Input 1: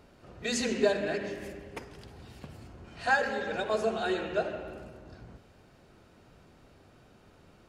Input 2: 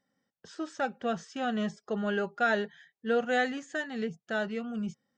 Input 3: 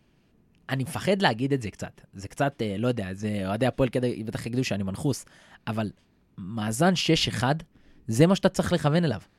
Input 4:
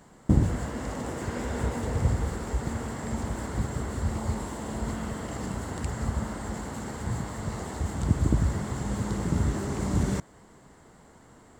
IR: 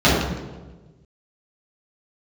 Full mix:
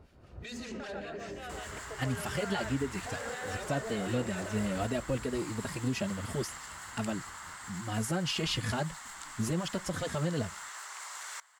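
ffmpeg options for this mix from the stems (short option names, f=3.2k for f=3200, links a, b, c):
-filter_complex "[0:a]equalizer=f=65:t=o:w=1.8:g=10.5,aeval=exprs='0.158*sin(PI/2*1.78*val(0)/0.158)':c=same,volume=-10.5dB[a];[1:a]highpass=f=460:w=0.5412,highpass=f=460:w=1.3066,volume=-4.5dB,asplit=2[b][c];[c]volume=-10dB[d];[2:a]alimiter=limit=-16dB:level=0:latency=1,asplit=2[e][f];[f]adelay=3.4,afreqshift=-2.9[g];[e][g]amix=inputs=2:normalize=1,adelay=1300,volume=-1.5dB[h];[3:a]highpass=f=1.1k:w=0.5412,highpass=f=1.1k:w=1.3066,adelay=1200,volume=-1dB[i];[h][i]amix=inputs=2:normalize=0,alimiter=limit=-22dB:level=0:latency=1:release=168,volume=0dB[j];[a][b]amix=inputs=2:normalize=0,acrossover=split=1500[k][l];[k]aeval=exprs='val(0)*(1-0.7/2+0.7/2*cos(2*PI*5.2*n/s))':c=same[m];[l]aeval=exprs='val(0)*(1-0.7/2-0.7/2*cos(2*PI*5.2*n/s))':c=same[n];[m][n]amix=inputs=2:normalize=0,alimiter=level_in=10dB:limit=-24dB:level=0:latency=1,volume=-10dB,volume=0dB[o];[d]aecho=0:1:140:1[p];[j][o][p]amix=inputs=3:normalize=0"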